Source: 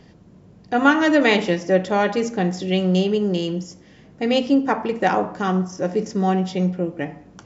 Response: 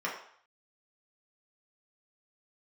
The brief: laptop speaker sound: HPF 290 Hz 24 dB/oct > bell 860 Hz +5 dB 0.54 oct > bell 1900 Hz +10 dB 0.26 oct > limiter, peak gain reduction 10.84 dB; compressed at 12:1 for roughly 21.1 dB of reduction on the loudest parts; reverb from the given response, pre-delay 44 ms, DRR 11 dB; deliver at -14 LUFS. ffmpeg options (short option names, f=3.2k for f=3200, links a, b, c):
-filter_complex "[0:a]acompressor=threshold=-32dB:ratio=12,asplit=2[a][b];[1:a]atrim=start_sample=2205,adelay=44[c];[b][c]afir=irnorm=-1:irlink=0,volume=-18dB[d];[a][d]amix=inputs=2:normalize=0,highpass=f=290:w=0.5412,highpass=f=290:w=1.3066,equalizer=f=860:t=o:w=0.54:g=5,equalizer=f=1.9k:t=o:w=0.26:g=10,volume=26.5dB,alimiter=limit=-4.5dB:level=0:latency=1"